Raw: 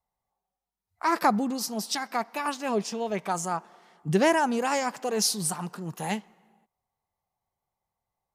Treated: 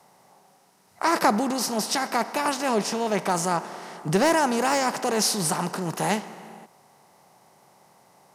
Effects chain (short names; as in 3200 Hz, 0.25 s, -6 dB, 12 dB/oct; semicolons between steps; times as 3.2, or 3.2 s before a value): per-bin compression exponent 0.6; HPF 81 Hz; 3.23–4.93 hard clip -12 dBFS, distortion -26 dB